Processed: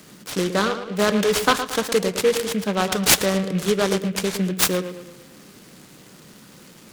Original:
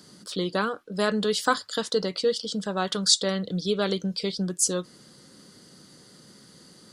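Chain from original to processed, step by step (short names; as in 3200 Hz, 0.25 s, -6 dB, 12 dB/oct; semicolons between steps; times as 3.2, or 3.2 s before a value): tape echo 0.112 s, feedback 53%, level -8 dB, low-pass 1500 Hz; noise-modulated delay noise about 2100 Hz, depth 0.06 ms; gain +5 dB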